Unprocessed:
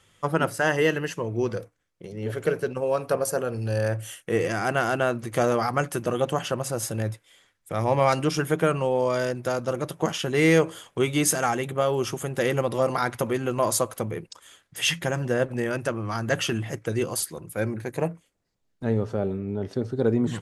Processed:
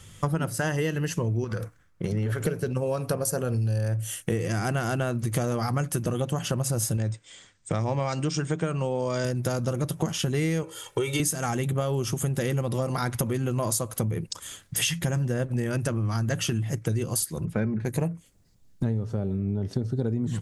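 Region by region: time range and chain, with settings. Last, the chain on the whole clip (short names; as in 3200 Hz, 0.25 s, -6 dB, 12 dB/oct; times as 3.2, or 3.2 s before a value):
1.44–2.42 bell 1400 Hz +11 dB 1.4 oct + compressor, threshold -28 dBFS + mismatched tape noise reduction decoder only
6.97–9.25 brick-wall FIR low-pass 8800 Hz + low shelf 110 Hz -10 dB
10.63–11.2 tone controls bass -12 dB, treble -2 dB + comb 2.2 ms, depth 79% + compressor 4:1, threshold -22 dBFS
17.45–17.85 LPF 2600 Hz + comb 4.7 ms, depth 45%
whole clip: tone controls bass +13 dB, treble +8 dB; compressor 12:1, threshold -29 dBFS; gain +5.5 dB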